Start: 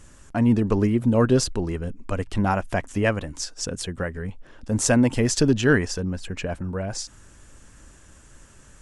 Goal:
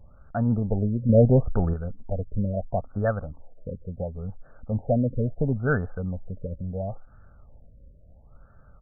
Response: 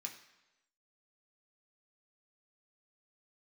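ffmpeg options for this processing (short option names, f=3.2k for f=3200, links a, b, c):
-filter_complex "[0:a]asettb=1/sr,asplit=3[a][b][c];[a]atrim=end=1.094[d];[b]atrim=start=1.09:end=1.74,asetpts=PTS-STARTPTS,afade=t=in:d=0.004:c=qsin,afade=t=out:st=0.646:d=0.004:c=qsin,acontrast=85[e];[c]atrim=start=1.736[f];[d][e]acrossfade=d=0.004:c1=hsin:c2=qsin[g];[g][f]acrossfade=d=0.004:c1=qsin:c2=hsin,aecho=1:1:1.5:0.71,afftfilt=real='re*lt(b*sr/1024,590*pow(1800/590,0.5+0.5*sin(2*PI*0.73*pts/sr)))':imag='im*lt(b*sr/1024,590*pow(1800/590,0.5+0.5*sin(2*PI*0.73*pts/sr)))':win_size=1024:overlap=0.75,volume=-4.5dB"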